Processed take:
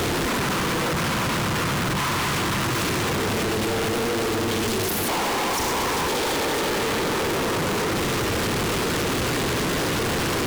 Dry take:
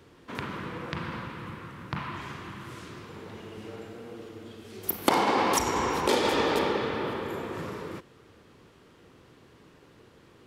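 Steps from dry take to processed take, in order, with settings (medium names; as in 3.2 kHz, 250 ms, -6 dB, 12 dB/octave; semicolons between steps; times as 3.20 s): one-bit comparator; loudspeaker Doppler distortion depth 0.24 ms; trim +8.5 dB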